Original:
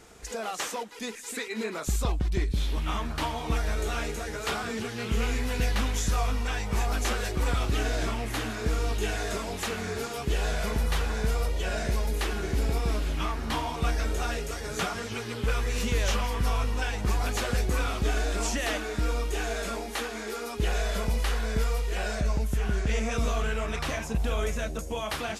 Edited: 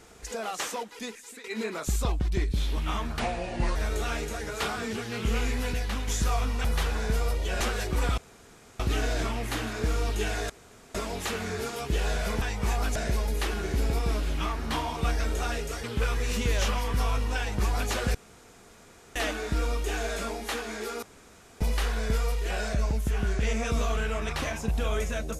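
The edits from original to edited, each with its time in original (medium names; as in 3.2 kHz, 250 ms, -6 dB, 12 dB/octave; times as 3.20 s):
0.95–1.44 s: fade out, to -16 dB
3.19–3.62 s: speed 76%
5.59–5.94 s: gain -4 dB
6.51–7.05 s: swap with 10.79–11.75 s
7.62 s: insert room tone 0.62 s
9.32 s: insert room tone 0.45 s
14.63–15.30 s: delete
17.61–18.62 s: room tone
20.49–21.07 s: room tone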